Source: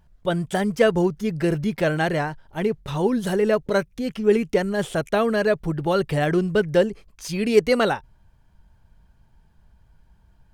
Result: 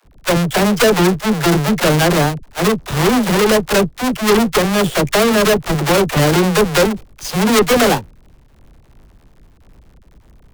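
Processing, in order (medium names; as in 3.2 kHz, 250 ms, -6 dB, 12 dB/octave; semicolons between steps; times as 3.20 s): square wave that keeps the level; phase dispersion lows, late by 54 ms, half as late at 350 Hz; valve stage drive 16 dB, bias 0.6; trim +8.5 dB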